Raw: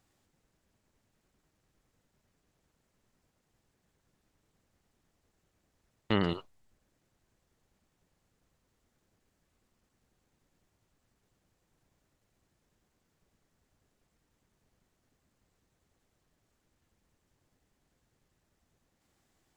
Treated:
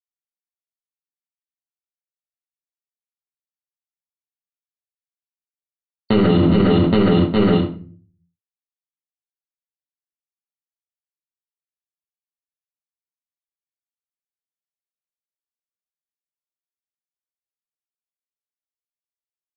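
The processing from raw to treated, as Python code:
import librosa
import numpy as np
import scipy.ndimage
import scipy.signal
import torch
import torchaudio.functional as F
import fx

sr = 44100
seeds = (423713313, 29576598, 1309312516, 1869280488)

y = fx.cvsd(x, sr, bps=64000)
y = scipy.signal.sosfilt(scipy.signal.butter(2, 85.0, 'highpass', fs=sr, output='sos'), y)
y = fx.low_shelf(y, sr, hz=350.0, db=7.5)
y = np.sign(y) * np.maximum(np.abs(y) - 10.0 ** (-43.0 / 20.0), 0.0)
y = fx.brickwall_lowpass(y, sr, high_hz=4500.0)
y = fx.echo_feedback(y, sr, ms=411, feedback_pct=52, wet_db=-23.0)
y = fx.room_shoebox(y, sr, seeds[0], volume_m3=32.0, walls='mixed', distance_m=1.1)
y = fx.env_flatten(y, sr, amount_pct=100)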